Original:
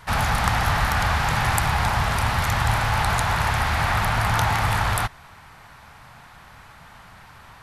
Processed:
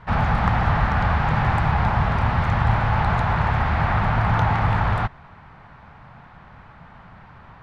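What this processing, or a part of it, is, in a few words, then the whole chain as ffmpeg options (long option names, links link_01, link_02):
phone in a pocket: -af "lowpass=3400,equalizer=frequency=180:width_type=o:width=0.89:gain=4,highshelf=frequency=2000:gain=-11,volume=2.5dB"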